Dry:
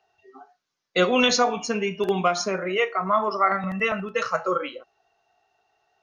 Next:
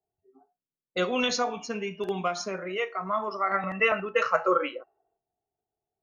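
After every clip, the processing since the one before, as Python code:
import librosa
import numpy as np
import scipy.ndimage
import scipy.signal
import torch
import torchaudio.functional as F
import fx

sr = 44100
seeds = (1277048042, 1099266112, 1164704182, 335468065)

y = fx.env_lowpass(x, sr, base_hz=320.0, full_db=-21.5)
y = fx.spec_box(y, sr, start_s=3.53, length_s=1.64, low_hz=270.0, high_hz=3000.0, gain_db=8)
y = y * 10.0 ** (-7.0 / 20.0)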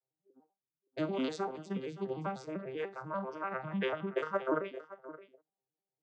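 y = fx.vocoder_arp(x, sr, chord='minor triad', root=48, every_ms=98)
y = y + 10.0 ** (-16.0 / 20.0) * np.pad(y, (int(571 * sr / 1000.0), 0))[:len(y)]
y = y * 10.0 ** (-7.5 / 20.0)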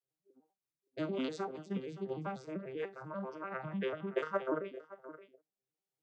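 y = fx.rotary_switch(x, sr, hz=5.5, then_hz=1.2, switch_at_s=2.9)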